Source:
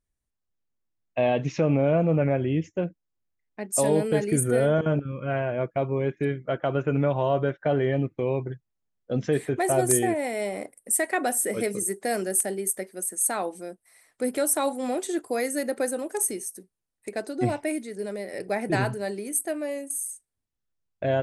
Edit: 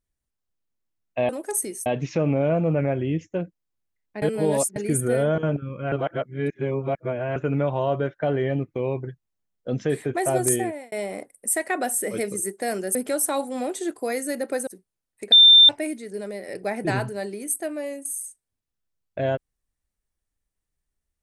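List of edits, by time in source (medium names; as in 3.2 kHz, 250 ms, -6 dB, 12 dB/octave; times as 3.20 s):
3.65–4.19 s: reverse
5.35–6.79 s: reverse
9.99–10.35 s: fade out
12.38–14.23 s: delete
15.95–16.52 s: move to 1.29 s
17.17–17.54 s: bleep 3.58 kHz -8 dBFS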